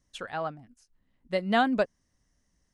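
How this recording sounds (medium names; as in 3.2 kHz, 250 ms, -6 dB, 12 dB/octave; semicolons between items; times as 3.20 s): noise floor -75 dBFS; spectral tilt -3.5 dB/octave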